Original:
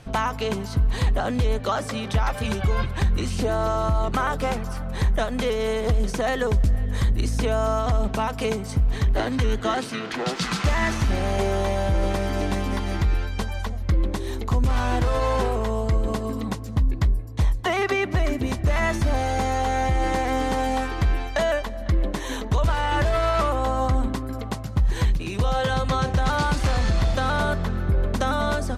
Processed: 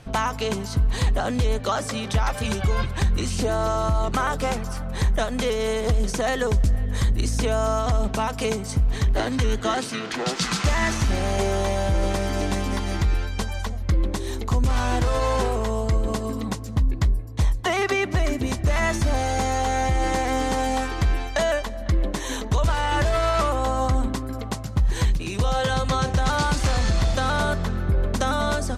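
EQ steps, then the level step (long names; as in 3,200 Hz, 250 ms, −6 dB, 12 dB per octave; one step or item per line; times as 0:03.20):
dynamic equaliser 7,200 Hz, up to +6 dB, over −50 dBFS, Q 0.81
0.0 dB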